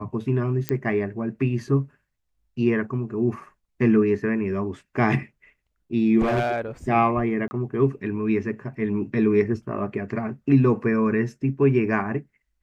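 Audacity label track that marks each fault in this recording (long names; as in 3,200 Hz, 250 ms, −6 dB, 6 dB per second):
0.690000	0.690000	click −9 dBFS
6.200000	6.600000	clipping −18 dBFS
7.480000	7.510000	drop-out 30 ms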